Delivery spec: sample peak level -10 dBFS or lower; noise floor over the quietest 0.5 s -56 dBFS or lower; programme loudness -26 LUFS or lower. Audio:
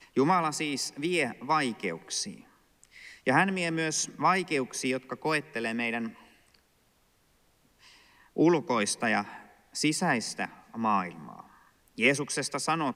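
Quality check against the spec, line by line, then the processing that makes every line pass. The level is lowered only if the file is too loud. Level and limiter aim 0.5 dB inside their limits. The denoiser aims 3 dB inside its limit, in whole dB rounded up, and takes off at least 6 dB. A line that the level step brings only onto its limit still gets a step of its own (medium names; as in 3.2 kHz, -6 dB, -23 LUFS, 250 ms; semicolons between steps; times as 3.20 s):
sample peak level -9.0 dBFS: fail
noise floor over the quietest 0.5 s -67 dBFS: pass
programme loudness -28.5 LUFS: pass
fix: peak limiter -10.5 dBFS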